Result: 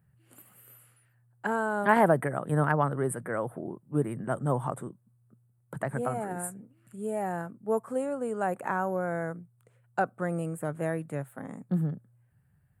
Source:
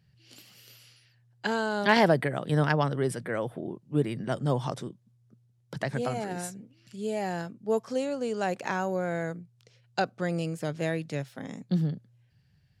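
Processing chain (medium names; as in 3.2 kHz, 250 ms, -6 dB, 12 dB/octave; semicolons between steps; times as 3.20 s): FFT filter 450 Hz 0 dB, 1.3 kHz +5 dB, 5.5 kHz -27 dB, 8.4 kHz +6 dB; trim -1.5 dB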